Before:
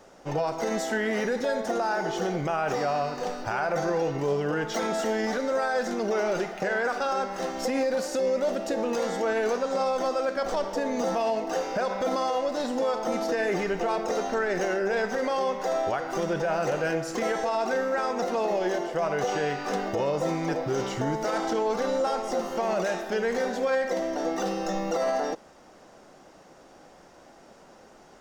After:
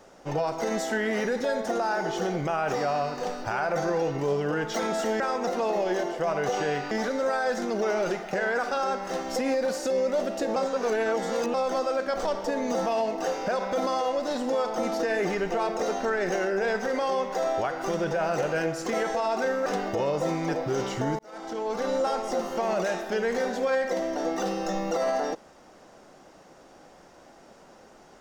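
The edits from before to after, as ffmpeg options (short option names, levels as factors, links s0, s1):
-filter_complex "[0:a]asplit=7[s0][s1][s2][s3][s4][s5][s6];[s0]atrim=end=5.202[s7];[s1]atrim=start=17.948:end=19.662[s8];[s2]atrim=start=5.198:end=8.852[s9];[s3]atrim=start=8.848:end=9.832,asetpts=PTS-STARTPTS,areverse[s10];[s4]atrim=start=9.828:end=17.952[s11];[s5]atrim=start=19.658:end=21.19,asetpts=PTS-STARTPTS,afade=t=out:st=1.528:d=0.004:c=hsin[s12];[s6]atrim=start=21.19,asetpts=PTS-STARTPTS,afade=t=in:d=0.75[s13];[s7][s8]acrossfade=d=0.004:c1=hsin:c2=hsin[s14];[s14][s9]acrossfade=d=0.004:c1=hsin:c2=hsin[s15];[s15][s10]acrossfade=d=0.004:c1=hsin:c2=hsin[s16];[s16][s11]acrossfade=d=0.004:c1=hsin:c2=hsin[s17];[s12][s13]concat=n=2:v=0:a=1[s18];[s17][s18]acrossfade=d=0.004:c1=hsin:c2=hsin"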